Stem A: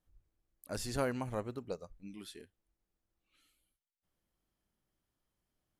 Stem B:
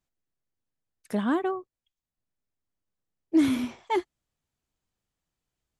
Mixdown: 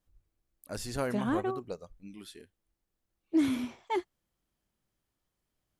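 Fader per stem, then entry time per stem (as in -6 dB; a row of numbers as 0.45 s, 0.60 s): +1.0 dB, -5.0 dB; 0.00 s, 0.00 s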